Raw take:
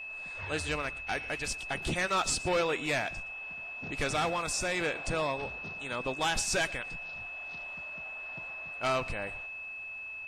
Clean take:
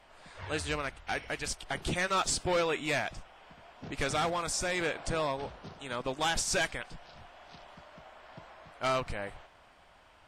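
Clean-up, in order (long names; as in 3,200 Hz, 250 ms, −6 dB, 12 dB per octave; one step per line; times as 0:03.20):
notch filter 2,600 Hz, Q 30
echo removal 118 ms −20 dB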